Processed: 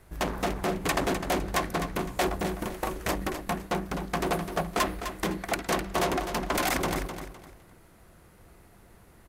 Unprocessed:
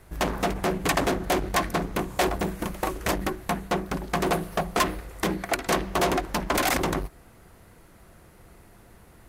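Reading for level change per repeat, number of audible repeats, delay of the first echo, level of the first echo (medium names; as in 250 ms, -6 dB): -11.0 dB, 3, 255 ms, -9.0 dB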